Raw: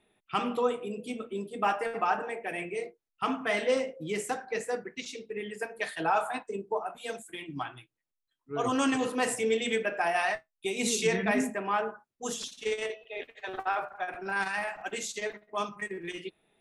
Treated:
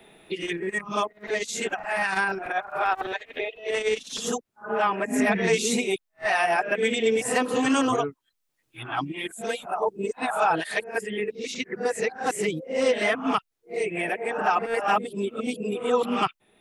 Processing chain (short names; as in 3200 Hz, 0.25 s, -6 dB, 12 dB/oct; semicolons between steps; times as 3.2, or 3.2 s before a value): whole clip reversed; three-band squash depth 40%; gain +5.5 dB